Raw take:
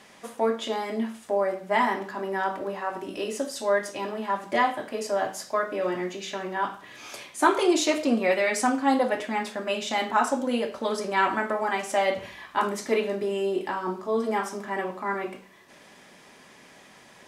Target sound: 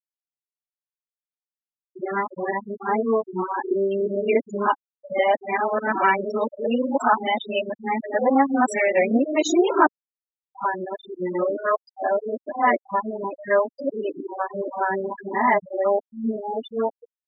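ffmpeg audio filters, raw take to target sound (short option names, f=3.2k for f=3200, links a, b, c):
-af "areverse,dynaudnorm=f=110:g=17:m=4.5dB,afftfilt=real='re*gte(hypot(re,im),0.141)':imag='im*gte(hypot(re,im),0.141)':win_size=1024:overlap=0.75"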